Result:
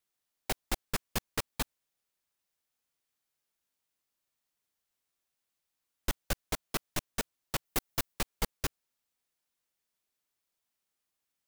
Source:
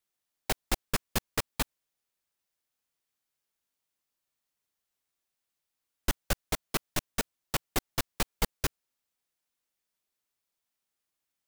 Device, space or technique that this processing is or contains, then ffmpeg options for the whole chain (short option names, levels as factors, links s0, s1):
saturation between pre-emphasis and de-emphasis: -filter_complex "[0:a]highshelf=f=5100:g=11.5,asoftclip=type=tanh:threshold=0.119,highshelf=f=5100:g=-11.5,asettb=1/sr,asplit=3[s0][s1][s2];[s0]atrim=end=7.654[s3];[s1]atrim=start=7.65:end=8.14,asetpts=PTS-STARTPTS,afade=t=in:d=0.004:c=qsin,afade=t=out:st=0.486:d=0.004:c=qsin,highshelf=f=11000:g=7[s4];[s2]atrim=start=8.136[s5];[s3][s4]acrossfade=d=0.004:c1=hsin:c2=qsin[s6];[s6][s5]acrossfade=d=0.004:c1=qsin:c2=hsin"